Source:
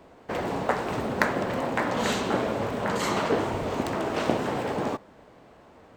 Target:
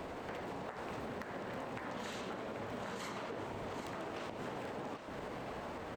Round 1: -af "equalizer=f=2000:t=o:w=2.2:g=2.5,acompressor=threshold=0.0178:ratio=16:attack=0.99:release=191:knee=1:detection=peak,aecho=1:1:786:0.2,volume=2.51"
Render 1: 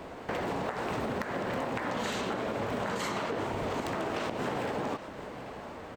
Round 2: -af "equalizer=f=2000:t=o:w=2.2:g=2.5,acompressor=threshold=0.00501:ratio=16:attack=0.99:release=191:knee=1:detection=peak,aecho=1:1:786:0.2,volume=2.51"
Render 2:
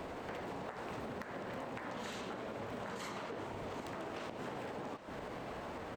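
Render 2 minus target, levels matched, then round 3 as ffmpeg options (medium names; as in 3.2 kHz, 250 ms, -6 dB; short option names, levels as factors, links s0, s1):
echo-to-direct -6 dB
-af "equalizer=f=2000:t=o:w=2.2:g=2.5,acompressor=threshold=0.00501:ratio=16:attack=0.99:release=191:knee=1:detection=peak,aecho=1:1:786:0.398,volume=2.51"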